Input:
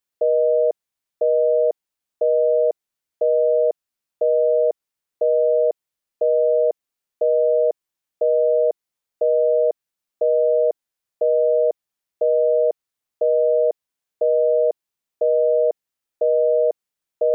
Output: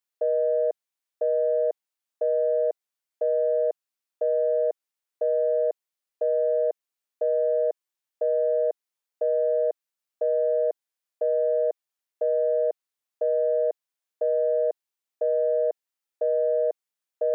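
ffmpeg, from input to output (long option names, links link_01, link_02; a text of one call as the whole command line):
ffmpeg -i in.wav -af "highpass=frequency=430:poles=1,acontrast=24,volume=-8.5dB" out.wav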